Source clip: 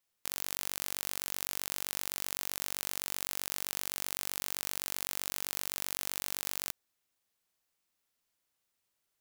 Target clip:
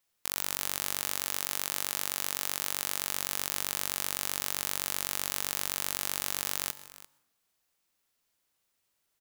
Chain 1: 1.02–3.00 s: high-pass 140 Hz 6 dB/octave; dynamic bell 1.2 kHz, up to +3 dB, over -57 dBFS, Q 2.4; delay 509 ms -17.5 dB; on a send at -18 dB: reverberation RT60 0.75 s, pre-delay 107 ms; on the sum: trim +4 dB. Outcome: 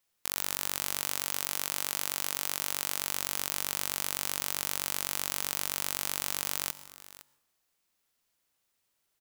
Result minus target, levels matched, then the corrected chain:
echo 166 ms late
1.02–3.00 s: high-pass 140 Hz 6 dB/octave; dynamic bell 1.2 kHz, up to +3 dB, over -57 dBFS, Q 2.4; delay 343 ms -17.5 dB; on a send at -18 dB: reverberation RT60 0.75 s, pre-delay 107 ms; on the sum: trim +4 dB

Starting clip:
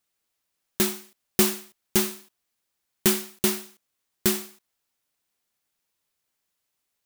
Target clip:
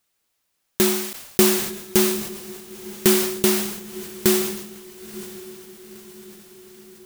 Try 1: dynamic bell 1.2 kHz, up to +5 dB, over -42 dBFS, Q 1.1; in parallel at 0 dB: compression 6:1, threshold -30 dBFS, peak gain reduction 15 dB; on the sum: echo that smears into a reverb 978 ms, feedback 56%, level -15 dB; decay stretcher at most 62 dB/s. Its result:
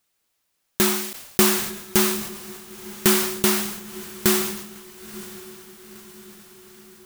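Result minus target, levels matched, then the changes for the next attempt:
1 kHz band +3.5 dB
change: dynamic bell 420 Hz, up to +5 dB, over -42 dBFS, Q 1.1

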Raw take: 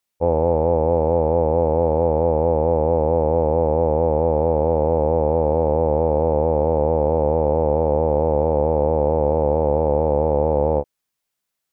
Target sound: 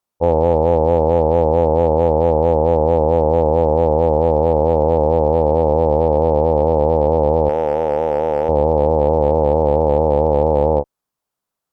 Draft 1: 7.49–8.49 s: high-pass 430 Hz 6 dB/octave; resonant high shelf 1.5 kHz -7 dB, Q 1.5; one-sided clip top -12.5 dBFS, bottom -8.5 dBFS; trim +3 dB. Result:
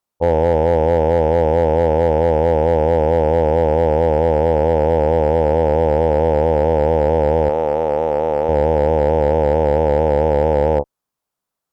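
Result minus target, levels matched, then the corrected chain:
one-sided clip: distortion +4 dB
7.49–8.49 s: high-pass 430 Hz 6 dB/octave; resonant high shelf 1.5 kHz -7 dB, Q 1.5; one-sided clip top -12.5 dBFS, bottom -1 dBFS; trim +3 dB

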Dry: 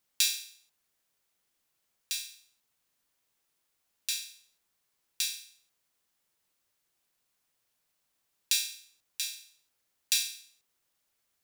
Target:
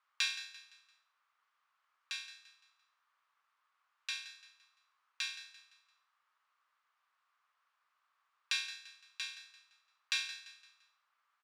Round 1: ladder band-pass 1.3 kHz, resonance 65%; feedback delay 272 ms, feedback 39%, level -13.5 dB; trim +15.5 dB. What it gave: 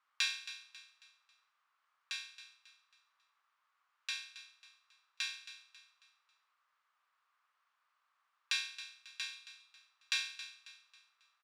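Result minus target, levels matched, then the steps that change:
echo 101 ms late
change: feedback delay 171 ms, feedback 39%, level -13.5 dB

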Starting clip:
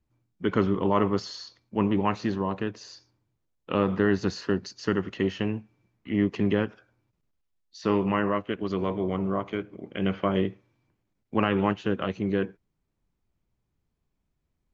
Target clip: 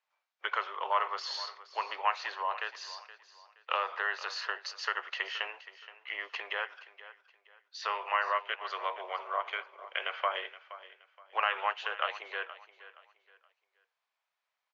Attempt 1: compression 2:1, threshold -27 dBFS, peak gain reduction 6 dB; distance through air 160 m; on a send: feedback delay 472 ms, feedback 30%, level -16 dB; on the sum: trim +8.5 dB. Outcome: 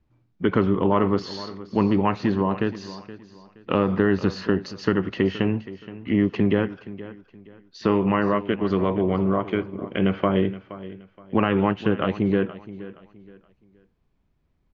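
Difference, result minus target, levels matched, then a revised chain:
1 kHz band -7.5 dB
compression 2:1, threshold -27 dBFS, peak gain reduction 6 dB; Bessel high-pass 1.1 kHz, order 8; distance through air 160 m; on a send: feedback delay 472 ms, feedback 30%, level -16 dB; on the sum: trim +8.5 dB

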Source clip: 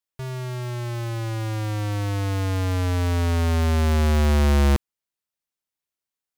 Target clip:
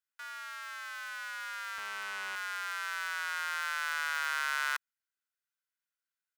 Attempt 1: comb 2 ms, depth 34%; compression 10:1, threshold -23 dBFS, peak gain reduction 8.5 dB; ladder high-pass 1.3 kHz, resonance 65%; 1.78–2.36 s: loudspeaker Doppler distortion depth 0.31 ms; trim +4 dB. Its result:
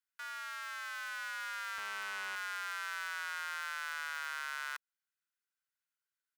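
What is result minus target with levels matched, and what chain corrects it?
compression: peak gain reduction +8.5 dB
ladder high-pass 1.3 kHz, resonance 65%; comb 2 ms, depth 34%; 1.78–2.36 s: loudspeaker Doppler distortion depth 0.31 ms; trim +4 dB

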